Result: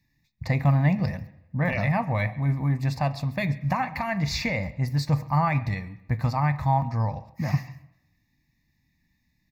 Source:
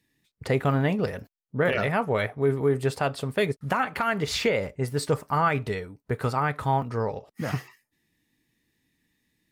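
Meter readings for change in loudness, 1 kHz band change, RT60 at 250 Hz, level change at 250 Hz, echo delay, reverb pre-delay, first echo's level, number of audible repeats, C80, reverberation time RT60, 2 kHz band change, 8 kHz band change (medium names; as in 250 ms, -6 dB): +0.5 dB, -0.5 dB, 0.85 s, +2.0 dB, 136 ms, 3 ms, -23.5 dB, 1, 18.0 dB, 0.85 s, -1.5 dB, -4.5 dB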